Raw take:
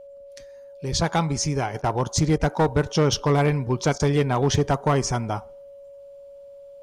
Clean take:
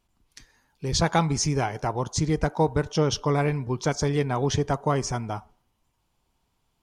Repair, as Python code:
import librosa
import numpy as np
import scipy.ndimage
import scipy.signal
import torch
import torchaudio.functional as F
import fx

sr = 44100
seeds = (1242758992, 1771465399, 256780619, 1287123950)

y = fx.fix_declip(x, sr, threshold_db=-13.5)
y = fx.notch(y, sr, hz=560.0, q=30.0)
y = fx.fix_interpolate(y, sr, at_s=(1.82, 2.38, 3.98), length_ms=17.0)
y = fx.fix_level(y, sr, at_s=1.74, step_db=-4.0)